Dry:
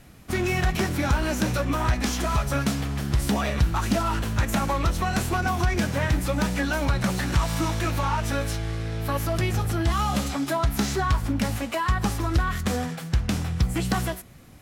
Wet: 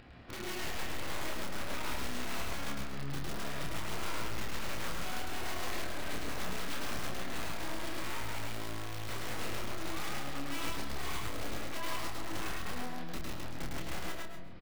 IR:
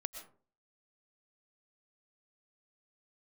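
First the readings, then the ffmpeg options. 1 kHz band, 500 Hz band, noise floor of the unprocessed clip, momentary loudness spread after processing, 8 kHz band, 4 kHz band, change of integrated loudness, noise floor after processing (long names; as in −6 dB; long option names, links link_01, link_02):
−13.5 dB, −13.5 dB, −38 dBFS, 3 LU, −10.0 dB, −7.5 dB, −14.0 dB, −38 dBFS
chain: -filter_complex "[0:a]bass=frequency=250:gain=-4,treble=frequency=4000:gain=-11,aresample=11025,acrusher=bits=5:mode=log:mix=0:aa=0.000001,aresample=44100,acompressor=threshold=-35dB:ratio=2,flanger=delay=16.5:depth=5.9:speed=0.45,aeval=exprs='(mod(33.5*val(0)+1,2)-1)/33.5':channel_layout=same,acompressor=mode=upward:threshold=-47dB:ratio=2.5,aeval=exprs='clip(val(0),-1,0.00316)':channel_layout=same,asplit=2[link_01][link_02];[link_02]adelay=28,volume=-5dB[link_03];[link_01][link_03]amix=inputs=2:normalize=0,aecho=1:1:137:0.224,asplit=2[link_04][link_05];[1:a]atrim=start_sample=2205,adelay=106[link_06];[link_05][link_06]afir=irnorm=-1:irlink=0,volume=0.5dB[link_07];[link_04][link_07]amix=inputs=2:normalize=0,volume=-3dB"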